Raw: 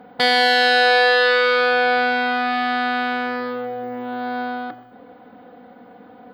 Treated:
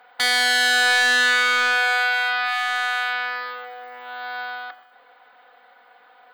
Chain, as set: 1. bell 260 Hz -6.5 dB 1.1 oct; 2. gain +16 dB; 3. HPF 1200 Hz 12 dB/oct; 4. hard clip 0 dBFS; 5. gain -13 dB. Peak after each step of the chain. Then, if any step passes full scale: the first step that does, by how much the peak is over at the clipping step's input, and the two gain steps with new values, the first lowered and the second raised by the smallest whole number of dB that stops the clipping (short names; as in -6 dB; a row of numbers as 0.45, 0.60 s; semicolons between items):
-3.5, +12.5, +9.0, 0.0, -13.0 dBFS; step 2, 9.0 dB; step 2 +7 dB, step 5 -4 dB